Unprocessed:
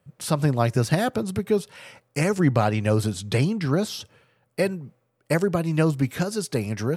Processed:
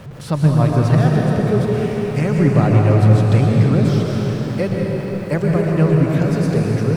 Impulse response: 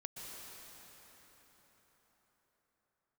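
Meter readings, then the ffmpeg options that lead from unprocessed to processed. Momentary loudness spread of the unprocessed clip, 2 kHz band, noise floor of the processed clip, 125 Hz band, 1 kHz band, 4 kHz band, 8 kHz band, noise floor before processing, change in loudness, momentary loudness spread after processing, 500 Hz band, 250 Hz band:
7 LU, +2.5 dB, −27 dBFS, +11.0 dB, +4.5 dB, 0.0 dB, can't be measured, −70 dBFS, +8.0 dB, 8 LU, +5.5 dB, +8.0 dB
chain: -filter_complex "[0:a]aeval=exprs='val(0)+0.5*0.0211*sgn(val(0))':channel_layout=same,lowpass=frequency=2500:poles=1,lowshelf=frequency=130:gain=10[link_01];[1:a]atrim=start_sample=2205[link_02];[link_01][link_02]afir=irnorm=-1:irlink=0,volume=5.5dB"

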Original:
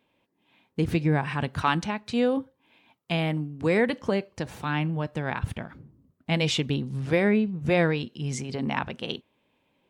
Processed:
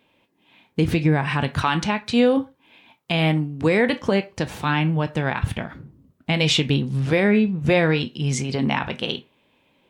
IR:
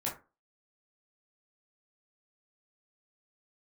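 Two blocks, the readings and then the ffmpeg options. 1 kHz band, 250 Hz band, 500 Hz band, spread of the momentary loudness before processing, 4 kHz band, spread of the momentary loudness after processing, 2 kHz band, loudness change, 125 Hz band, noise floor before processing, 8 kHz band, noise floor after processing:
+4.5 dB, +5.5 dB, +5.0 dB, 11 LU, +7.5 dB, 10 LU, +6.0 dB, +5.5 dB, +6.0 dB, −72 dBFS, +6.5 dB, −65 dBFS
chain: -filter_complex "[0:a]asplit=2[link_01][link_02];[link_02]equalizer=frequency=3200:width=0.56:gain=15[link_03];[1:a]atrim=start_sample=2205,atrim=end_sample=6174[link_04];[link_03][link_04]afir=irnorm=-1:irlink=0,volume=-19.5dB[link_05];[link_01][link_05]amix=inputs=2:normalize=0,alimiter=limit=-14dB:level=0:latency=1:release=115,volume=6dB"

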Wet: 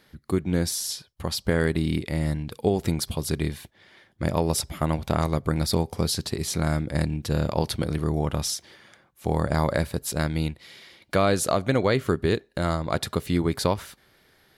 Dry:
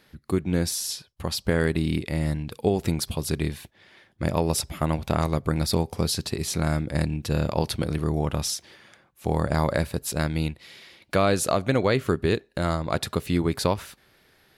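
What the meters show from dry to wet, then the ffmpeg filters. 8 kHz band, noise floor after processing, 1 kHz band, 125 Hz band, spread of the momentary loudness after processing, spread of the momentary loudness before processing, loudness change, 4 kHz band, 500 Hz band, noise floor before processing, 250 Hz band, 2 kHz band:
0.0 dB, −61 dBFS, 0.0 dB, 0.0 dB, 6 LU, 6 LU, 0.0 dB, 0.0 dB, 0.0 dB, −61 dBFS, 0.0 dB, −0.5 dB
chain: -af "bandreject=frequency=2600:width=15"

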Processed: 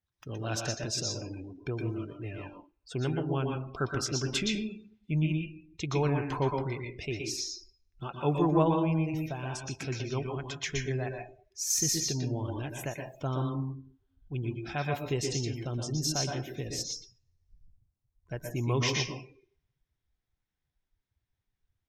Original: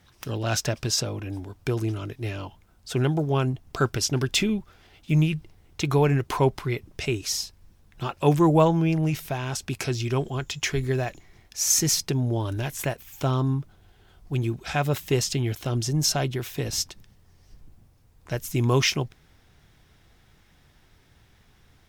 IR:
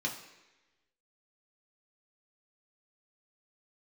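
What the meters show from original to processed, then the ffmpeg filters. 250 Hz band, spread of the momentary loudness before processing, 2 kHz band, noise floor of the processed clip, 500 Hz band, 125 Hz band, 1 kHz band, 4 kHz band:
−6.0 dB, 12 LU, −6.5 dB, −85 dBFS, −6.5 dB, −7.0 dB, −6.0 dB, −6.0 dB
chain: -filter_complex "[0:a]asplit=2[link_01][link_02];[link_02]highpass=frequency=260:poles=1[link_03];[1:a]atrim=start_sample=2205,adelay=118[link_04];[link_03][link_04]afir=irnorm=-1:irlink=0,volume=-5dB[link_05];[link_01][link_05]amix=inputs=2:normalize=0,afftdn=noise_reduction=24:noise_floor=-38,volume=-8.5dB"

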